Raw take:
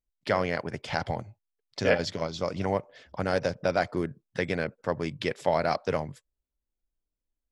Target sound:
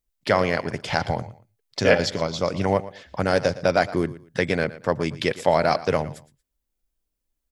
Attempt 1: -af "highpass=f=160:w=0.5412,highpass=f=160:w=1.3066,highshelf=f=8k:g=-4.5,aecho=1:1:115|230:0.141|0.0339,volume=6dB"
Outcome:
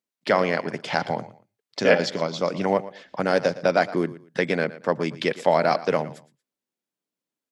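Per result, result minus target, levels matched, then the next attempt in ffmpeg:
125 Hz band -4.5 dB; 8000 Hz band -3.5 dB
-af "highshelf=f=8k:g=-4.5,aecho=1:1:115|230:0.141|0.0339,volume=6dB"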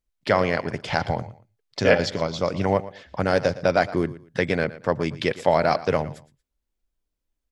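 8000 Hz band -4.0 dB
-af "highshelf=f=8k:g=6,aecho=1:1:115|230:0.141|0.0339,volume=6dB"

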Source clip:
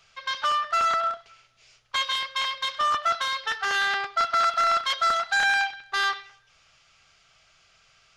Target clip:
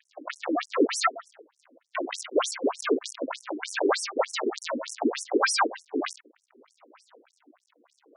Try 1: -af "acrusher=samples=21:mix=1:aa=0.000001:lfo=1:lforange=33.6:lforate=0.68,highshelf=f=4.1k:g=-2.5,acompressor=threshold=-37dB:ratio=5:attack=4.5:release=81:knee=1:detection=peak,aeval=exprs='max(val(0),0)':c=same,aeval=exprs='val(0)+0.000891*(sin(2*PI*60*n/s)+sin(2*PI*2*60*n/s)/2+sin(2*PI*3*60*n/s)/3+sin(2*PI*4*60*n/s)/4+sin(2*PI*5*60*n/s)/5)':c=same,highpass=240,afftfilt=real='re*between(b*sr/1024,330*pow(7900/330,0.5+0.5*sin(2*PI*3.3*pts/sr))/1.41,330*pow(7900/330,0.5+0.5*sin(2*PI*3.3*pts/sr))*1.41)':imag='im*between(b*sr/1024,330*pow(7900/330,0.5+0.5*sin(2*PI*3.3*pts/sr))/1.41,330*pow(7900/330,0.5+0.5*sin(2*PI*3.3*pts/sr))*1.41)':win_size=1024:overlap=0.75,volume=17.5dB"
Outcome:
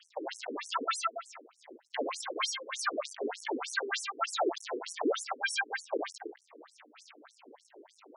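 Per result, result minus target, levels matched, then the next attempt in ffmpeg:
decimation with a swept rate: distortion -23 dB; compressor: peak gain reduction +9 dB
-af "acrusher=samples=62:mix=1:aa=0.000001:lfo=1:lforange=99.2:lforate=0.68,highshelf=f=4.1k:g=-2.5,acompressor=threshold=-37dB:ratio=5:attack=4.5:release=81:knee=1:detection=peak,aeval=exprs='max(val(0),0)':c=same,aeval=exprs='val(0)+0.000891*(sin(2*PI*60*n/s)+sin(2*PI*2*60*n/s)/2+sin(2*PI*3*60*n/s)/3+sin(2*PI*4*60*n/s)/4+sin(2*PI*5*60*n/s)/5)':c=same,highpass=240,afftfilt=real='re*between(b*sr/1024,330*pow(7900/330,0.5+0.5*sin(2*PI*3.3*pts/sr))/1.41,330*pow(7900/330,0.5+0.5*sin(2*PI*3.3*pts/sr))*1.41)':imag='im*between(b*sr/1024,330*pow(7900/330,0.5+0.5*sin(2*PI*3.3*pts/sr))/1.41,330*pow(7900/330,0.5+0.5*sin(2*PI*3.3*pts/sr))*1.41)':win_size=1024:overlap=0.75,volume=17.5dB"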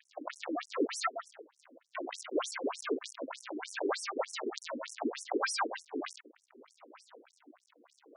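compressor: peak gain reduction +9 dB
-af "acrusher=samples=62:mix=1:aa=0.000001:lfo=1:lforange=99.2:lforate=0.68,highshelf=f=4.1k:g=-2.5,acompressor=threshold=-25.5dB:ratio=5:attack=4.5:release=81:knee=1:detection=peak,aeval=exprs='max(val(0),0)':c=same,aeval=exprs='val(0)+0.000891*(sin(2*PI*60*n/s)+sin(2*PI*2*60*n/s)/2+sin(2*PI*3*60*n/s)/3+sin(2*PI*4*60*n/s)/4+sin(2*PI*5*60*n/s)/5)':c=same,highpass=240,afftfilt=real='re*between(b*sr/1024,330*pow(7900/330,0.5+0.5*sin(2*PI*3.3*pts/sr))/1.41,330*pow(7900/330,0.5+0.5*sin(2*PI*3.3*pts/sr))*1.41)':imag='im*between(b*sr/1024,330*pow(7900/330,0.5+0.5*sin(2*PI*3.3*pts/sr))/1.41,330*pow(7900/330,0.5+0.5*sin(2*PI*3.3*pts/sr))*1.41)':win_size=1024:overlap=0.75,volume=17.5dB"

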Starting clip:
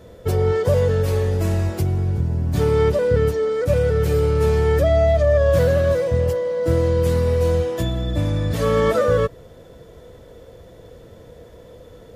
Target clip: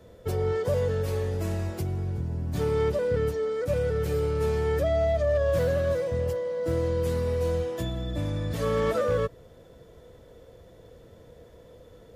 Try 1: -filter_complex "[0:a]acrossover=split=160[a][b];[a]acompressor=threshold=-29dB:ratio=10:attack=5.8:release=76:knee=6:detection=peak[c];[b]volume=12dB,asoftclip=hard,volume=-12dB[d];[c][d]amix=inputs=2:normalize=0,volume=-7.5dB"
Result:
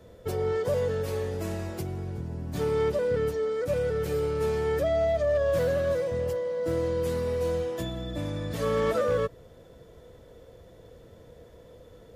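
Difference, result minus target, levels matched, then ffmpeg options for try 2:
compressor: peak gain reduction +8 dB
-filter_complex "[0:a]acrossover=split=160[a][b];[a]acompressor=threshold=-20dB:ratio=10:attack=5.8:release=76:knee=6:detection=peak[c];[b]volume=12dB,asoftclip=hard,volume=-12dB[d];[c][d]amix=inputs=2:normalize=0,volume=-7.5dB"

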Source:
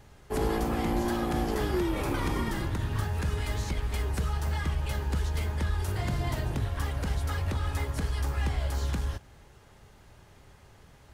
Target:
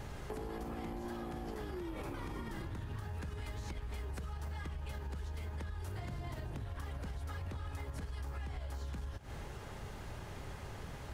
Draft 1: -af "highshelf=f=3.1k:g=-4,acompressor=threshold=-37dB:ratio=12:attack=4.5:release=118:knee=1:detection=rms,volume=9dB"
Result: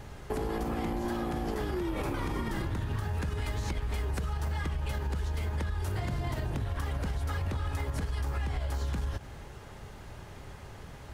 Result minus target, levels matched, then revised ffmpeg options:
compressor: peak gain reduction -9.5 dB
-af "highshelf=f=3.1k:g=-4,acompressor=threshold=-47.5dB:ratio=12:attack=4.5:release=118:knee=1:detection=rms,volume=9dB"

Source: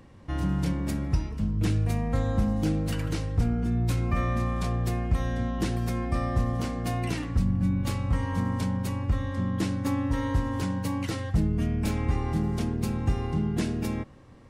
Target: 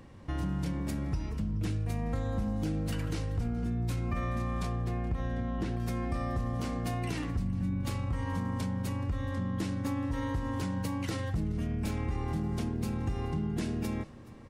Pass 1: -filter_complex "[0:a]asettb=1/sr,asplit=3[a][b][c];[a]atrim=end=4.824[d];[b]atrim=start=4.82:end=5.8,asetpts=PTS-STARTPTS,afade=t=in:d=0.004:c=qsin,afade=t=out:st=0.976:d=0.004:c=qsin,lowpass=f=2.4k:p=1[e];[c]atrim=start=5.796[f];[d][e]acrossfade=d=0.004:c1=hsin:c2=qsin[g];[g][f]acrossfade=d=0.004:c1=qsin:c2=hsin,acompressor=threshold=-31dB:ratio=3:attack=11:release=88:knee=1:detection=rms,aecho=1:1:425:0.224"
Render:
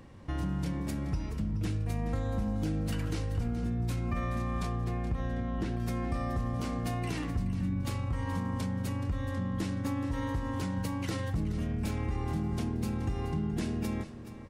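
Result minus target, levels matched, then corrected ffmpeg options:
echo-to-direct +8 dB
-filter_complex "[0:a]asettb=1/sr,asplit=3[a][b][c];[a]atrim=end=4.824[d];[b]atrim=start=4.82:end=5.8,asetpts=PTS-STARTPTS,afade=t=in:d=0.004:c=qsin,afade=t=out:st=0.976:d=0.004:c=qsin,lowpass=f=2.4k:p=1[e];[c]atrim=start=5.796[f];[d][e]acrossfade=d=0.004:c1=hsin:c2=qsin[g];[g][f]acrossfade=d=0.004:c1=qsin:c2=hsin,acompressor=threshold=-31dB:ratio=3:attack=11:release=88:knee=1:detection=rms,aecho=1:1:425:0.0891"

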